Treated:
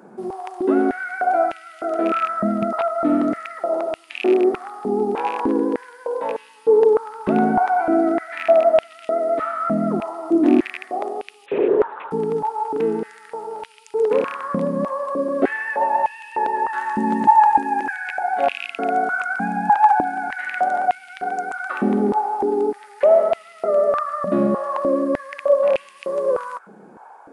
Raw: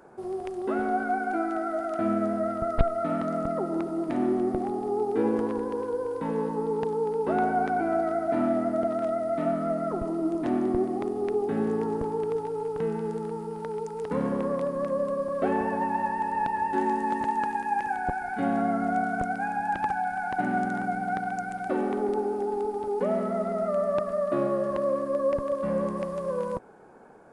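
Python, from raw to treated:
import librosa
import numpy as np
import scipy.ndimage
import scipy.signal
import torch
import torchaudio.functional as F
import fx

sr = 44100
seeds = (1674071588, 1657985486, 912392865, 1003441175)

y = fx.rattle_buzz(x, sr, strikes_db=-28.0, level_db=-25.0)
y = fx.lpc_vocoder(y, sr, seeds[0], excitation='whisper', order=10, at=(11.46, 12.11))
y = fx.filter_held_highpass(y, sr, hz=3.3, low_hz=200.0, high_hz=2700.0)
y = y * 10.0 ** (4.0 / 20.0)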